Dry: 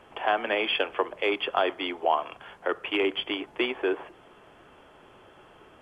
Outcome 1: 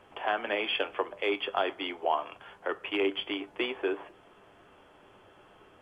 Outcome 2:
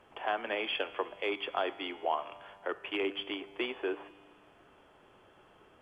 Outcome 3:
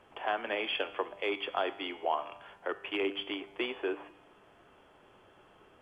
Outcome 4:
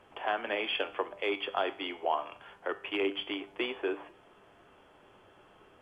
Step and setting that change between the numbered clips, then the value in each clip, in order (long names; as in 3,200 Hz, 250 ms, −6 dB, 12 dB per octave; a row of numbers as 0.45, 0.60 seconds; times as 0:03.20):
tuned comb filter, decay: 0.15, 2, 0.94, 0.44 seconds